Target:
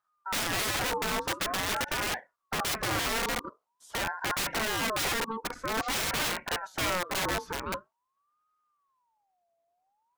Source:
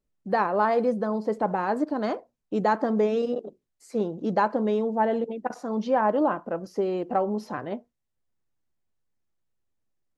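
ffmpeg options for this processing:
-af "aeval=exprs='(mod(15*val(0)+1,2)-1)/15':c=same,aeval=exprs='val(0)*sin(2*PI*960*n/s+960*0.3/0.47*sin(2*PI*0.47*n/s))':c=same,volume=1.19"

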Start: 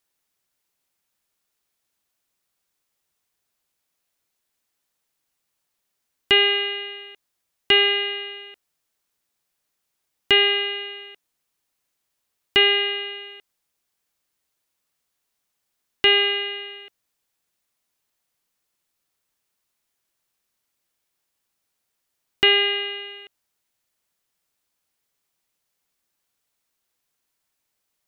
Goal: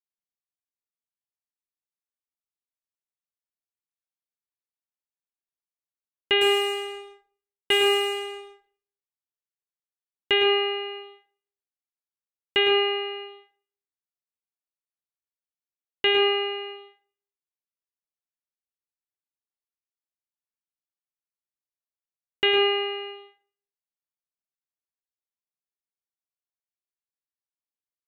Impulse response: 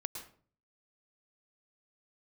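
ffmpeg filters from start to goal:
-filter_complex "[0:a]highshelf=f=2300:g=-4.5,agate=range=0.0708:threshold=0.0112:ratio=16:detection=peak,asettb=1/sr,asplit=3[s0][s1][s2];[s0]atrim=end=6.414[s3];[s1]atrim=start=6.41:end=8.5,asetpts=PTS-STARTPTS,afade=t=in:d=0.004:c=qsin,afade=t=out:st=2.086:d=0.004:c=qsin,adynamicsmooth=sensitivity=7.5:basefreq=1300[s4];[s2]atrim=start=8.496[s5];[s3][s4]acrossfade=d=0.004:c1=hsin:c2=qsin[s6];[s6][s5]acrossfade=d=0.004:c1=qsin:c2=hsin,asplit=2[s7][s8];[s8]adelay=25,volume=0.237[s9];[s7][s9]amix=inputs=2:normalize=0[s10];[1:a]atrim=start_sample=2205[s11];[s10][s11]afir=irnorm=-1:irlink=0,volume=0.891"

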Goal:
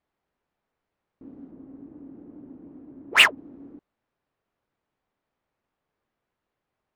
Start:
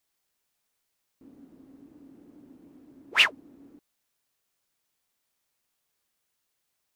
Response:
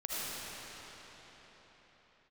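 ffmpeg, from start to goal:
-filter_complex "[0:a]asettb=1/sr,asplit=3[s0][s1][s2];[s0]atrim=end=1.514[s3];[s1]atrim=start=1.51:end=3.37,asetpts=PTS-STARTPTS,afade=t=in:d=0.004:c=qsin,afade=t=out:st=1.856:d=0.004:c=qsin,equalizer=f=7000:w=0.65:g=-11.5[s4];[s2]atrim=start=3.366[s5];[s3][s4]acrossfade=d=0.004:c1=hsin:c2=qsin[s6];[s6][s5]acrossfade=d=0.004:c1=qsin:c2=hsin,adynamicsmooth=sensitivity=5.5:basefreq=1500,volume=2.51"

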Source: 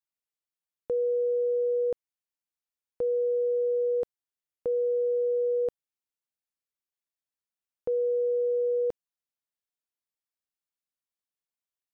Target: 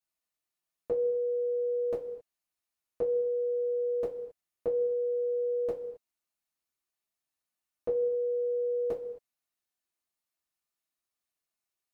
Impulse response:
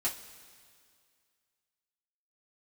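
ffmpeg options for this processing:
-filter_complex "[1:a]atrim=start_sample=2205,afade=t=out:st=0.32:d=0.01,atrim=end_sample=14553,asetrate=42777,aresample=44100[s0];[0:a][s0]afir=irnorm=-1:irlink=0"

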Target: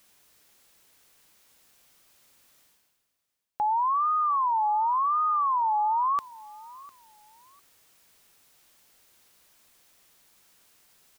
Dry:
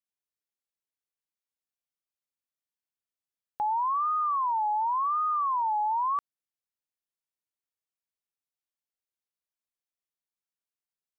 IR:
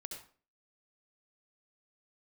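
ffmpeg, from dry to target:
-af "areverse,acompressor=mode=upward:threshold=0.00891:ratio=2.5,areverse,aecho=1:1:702|1404:0.0891|0.0214,volume=1.33"

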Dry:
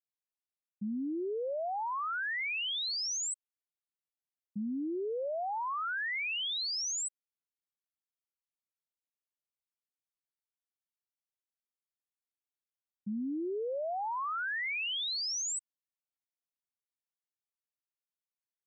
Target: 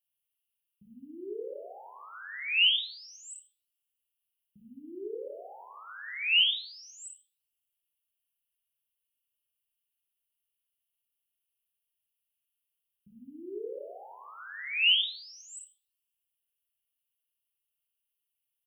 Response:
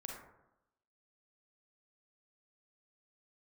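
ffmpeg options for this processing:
-filter_complex "[0:a]firequalizer=gain_entry='entry(110,0);entry(210,-25);entry(410,-5);entry(610,-17);entry(1000,-21);entry(2100,-8);entry(2900,13);entry(4200,-14);entry(6700,-21);entry(9800,10)':delay=0.05:min_phase=1[s0];[1:a]atrim=start_sample=2205[s1];[s0][s1]afir=irnorm=-1:irlink=0,volume=2.24"

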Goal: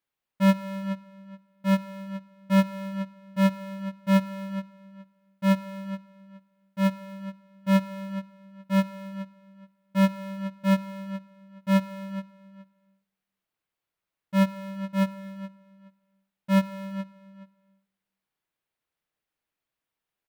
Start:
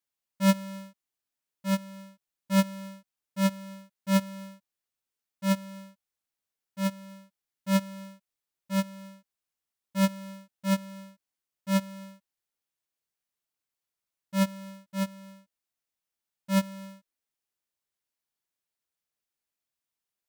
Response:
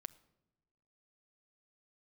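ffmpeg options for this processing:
-filter_complex "[0:a]asplit=2[s0][s1];[s1]adelay=422,lowpass=f=4800:p=1,volume=0.15,asplit=2[s2][s3];[s3]adelay=422,lowpass=f=4800:p=1,volume=0.18[s4];[s2][s4]amix=inputs=2:normalize=0[s5];[s0][s5]amix=inputs=2:normalize=0,acompressor=threshold=0.0447:ratio=2,asplit=2[s6][s7];[1:a]atrim=start_sample=2205,lowpass=3600[s8];[s7][s8]afir=irnorm=-1:irlink=0,volume=3.16[s9];[s6][s9]amix=inputs=2:normalize=0,volume=0.75"

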